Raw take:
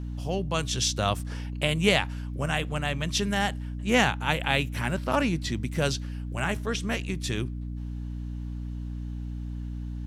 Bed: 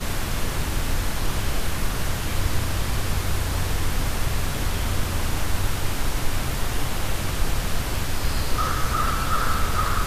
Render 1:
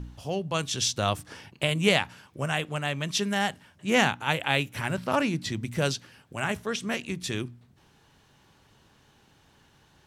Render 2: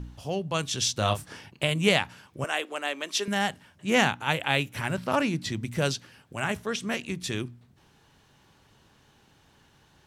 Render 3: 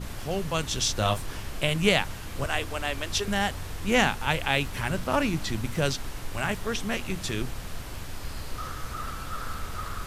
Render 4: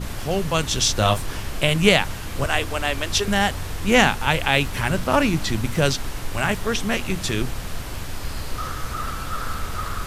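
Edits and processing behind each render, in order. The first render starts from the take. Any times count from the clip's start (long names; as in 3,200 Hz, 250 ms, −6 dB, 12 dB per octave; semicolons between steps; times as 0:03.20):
hum removal 60 Hz, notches 5
0:00.97–0:01.39: double-tracking delay 28 ms −7 dB; 0:02.44–0:03.28: Butterworth high-pass 270 Hz
mix in bed −12 dB
level +6.5 dB; brickwall limiter −3 dBFS, peak gain reduction 2 dB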